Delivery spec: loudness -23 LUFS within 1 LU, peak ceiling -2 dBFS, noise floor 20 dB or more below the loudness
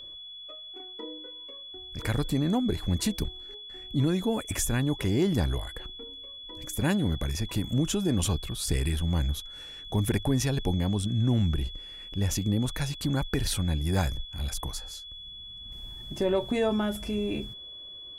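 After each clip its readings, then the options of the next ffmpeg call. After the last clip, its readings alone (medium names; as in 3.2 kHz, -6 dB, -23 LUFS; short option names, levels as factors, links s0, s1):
steady tone 3.4 kHz; tone level -41 dBFS; loudness -29.0 LUFS; peak level -13.0 dBFS; loudness target -23.0 LUFS
-> -af "bandreject=f=3400:w=30"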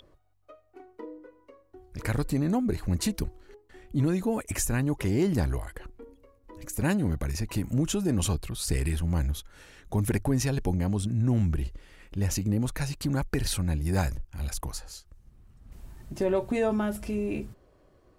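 steady tone not found; loudness -29.0 LUFS; peak level -13.5 dBFS; loudness target -23.0 LUFS
-> -af "volume=2"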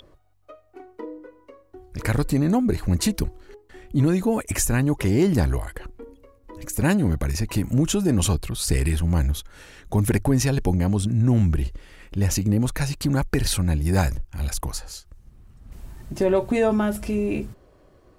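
loudness -23.0 LUFS; peak level -7.5 dBFS; noise floor -56 dBFS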